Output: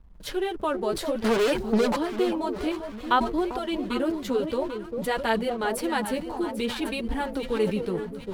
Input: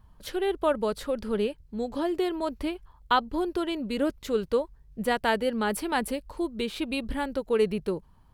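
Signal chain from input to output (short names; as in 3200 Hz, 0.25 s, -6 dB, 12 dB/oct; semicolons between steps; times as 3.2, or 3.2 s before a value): in parallel at +1.5 dB: compressor, threshold -34 dBFS, peak gain reduction 15.5 dB; 1.24–1.96 on the sum: overdrive pedal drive 34 dB, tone 7400 Hz, clips at -14.5 dBFS; on a send: echo with dull and thin repeats by turns 0.397 s, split 970 Hz, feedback 66%, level -7.5 dB; on the sum: flange 0.56 Hz, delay 4.1 ms, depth 8.5 ms, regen -3%; backlash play -48 dBFS; sustainer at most 94 dB/s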